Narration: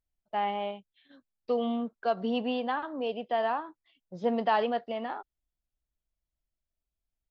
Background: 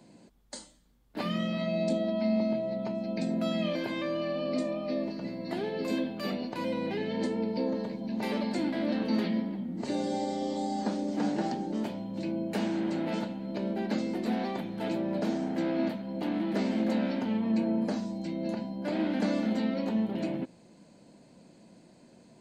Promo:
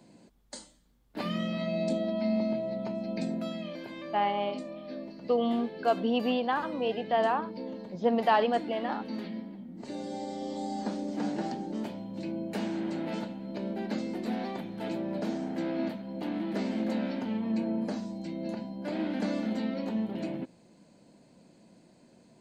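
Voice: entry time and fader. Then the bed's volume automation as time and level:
3.80 s, +2.0 dB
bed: 3.24 s -1 dB
3.65 s -8.5 dB
9.69 s -8.5 dB
10.71 s -2.5 dB

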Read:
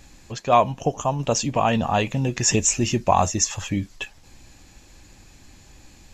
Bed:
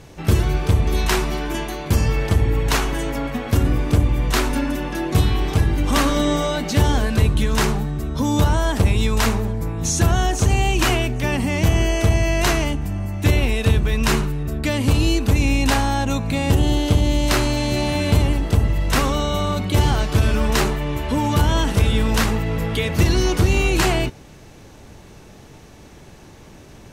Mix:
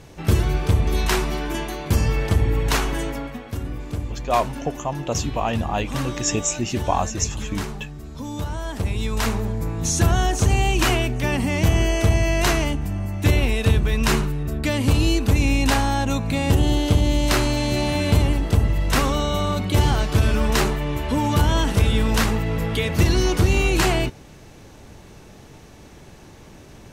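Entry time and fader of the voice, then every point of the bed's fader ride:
3.80 s, -3.5 dB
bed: 3.02 s -1.5 dB
3.52 s -11.5 dB
8.46 s -11.5 dB
9.56 s -1 dB

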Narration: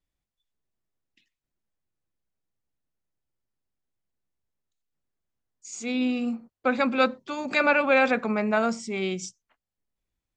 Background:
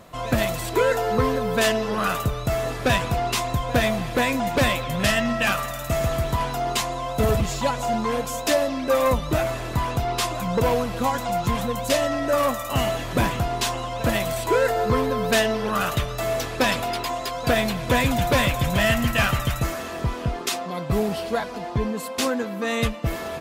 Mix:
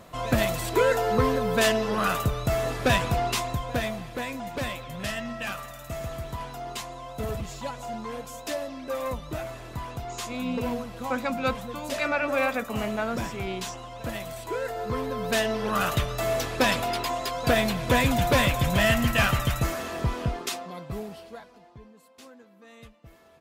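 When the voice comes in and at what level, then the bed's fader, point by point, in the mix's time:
4.45 s, -5.5 dB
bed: 3.2 s -1.5 dB
4.13 s -11 dB
14.63 s -11 dB
15.83 s -1.5 dB
20.22 s -1.5 dB
21.9 s -25.5 dB

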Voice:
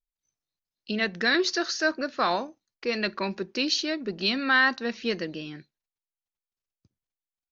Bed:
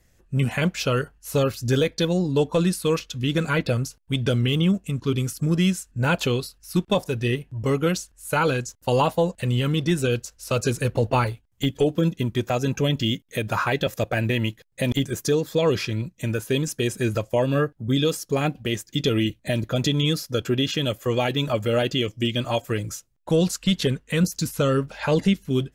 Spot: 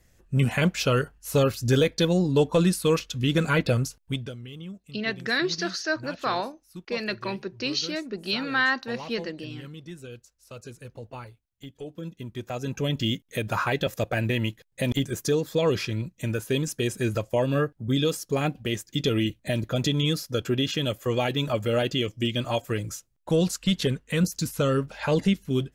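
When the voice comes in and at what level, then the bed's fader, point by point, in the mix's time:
4.05 s, -2.0 dB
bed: 4.07 s 0 dB
4.36 s -19 dB
11.75 s -19 dB
13.04 s -2.5 dB

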